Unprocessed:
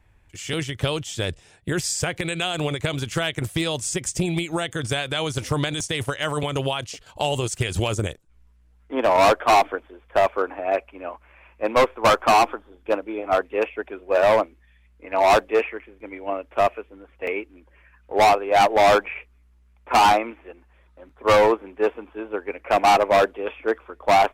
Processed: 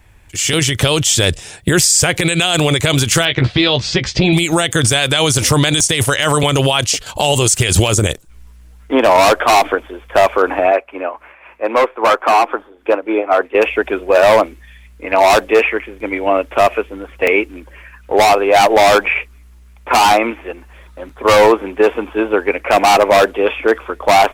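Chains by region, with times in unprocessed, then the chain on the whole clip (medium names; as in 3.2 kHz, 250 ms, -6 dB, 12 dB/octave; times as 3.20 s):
3.25–4.33 s: Chebyshev low-pass 4.4 kHz, order 4 + doubling 15 ms -7.5 dB
10.71–13.55 s: three-band isolator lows -16 dB, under 260 Hz, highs -12 dB, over 2.6 kHz + tremolo 3.7 Hz, depth 63%
whole clip: treble shelf 3.7 kHz +8.5 dB; level rider gain up to 6.5 dB; loudness maximiser +12.5 dB; trim -2 dB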